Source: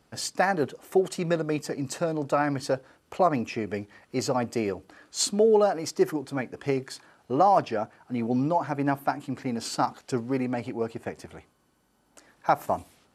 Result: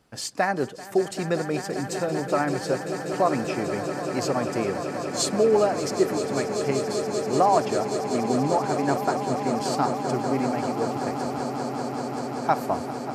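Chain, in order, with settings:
echo that builds up and dies away 194 ms, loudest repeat 8, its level −13 dB

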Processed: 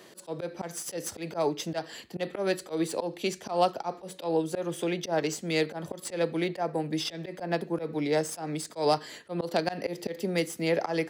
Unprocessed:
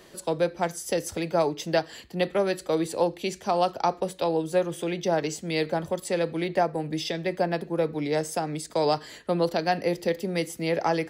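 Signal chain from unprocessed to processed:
stylus tracing distortion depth 0.024 ms
high-pass filter 140 Hz 12 dB per octave
volume swells 123 ms

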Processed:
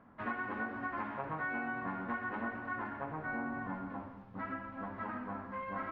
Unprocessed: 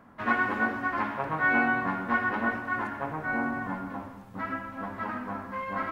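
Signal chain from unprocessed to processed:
downward compressor, threshold −28 dBFS, peak gain reduction 8.5 dB
high-frequency loss of the air 270 metres
level −5 dB

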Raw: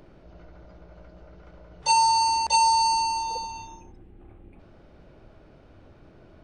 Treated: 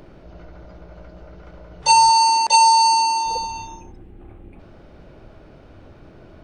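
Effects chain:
0:02.10–0:03.26: high-pass filter 260 Hz 12 dB per octave
level +7 dB

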